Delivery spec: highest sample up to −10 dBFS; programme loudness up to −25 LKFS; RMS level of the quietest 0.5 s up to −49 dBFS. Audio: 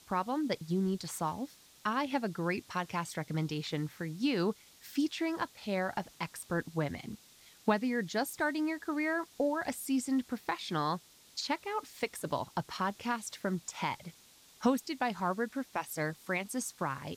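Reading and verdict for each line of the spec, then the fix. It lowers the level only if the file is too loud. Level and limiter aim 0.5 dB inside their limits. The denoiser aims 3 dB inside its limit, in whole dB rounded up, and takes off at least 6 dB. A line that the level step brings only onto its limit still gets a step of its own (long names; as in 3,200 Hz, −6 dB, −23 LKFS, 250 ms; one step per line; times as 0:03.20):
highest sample −16.0 dBFS: in spec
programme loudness −35.0 LKFS: in spec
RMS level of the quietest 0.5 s −60 dBFS: in spec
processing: no processing needed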